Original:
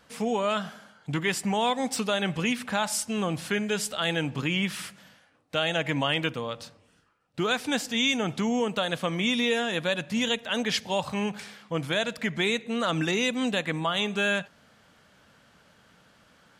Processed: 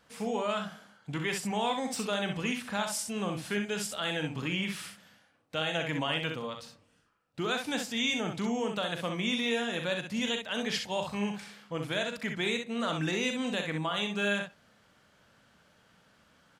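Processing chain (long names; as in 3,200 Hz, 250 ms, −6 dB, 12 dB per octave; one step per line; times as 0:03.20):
on a send: ambience of single reflections 39 ms −9.5 dB, 64 ms −6 dB
on the sum: level −6 dB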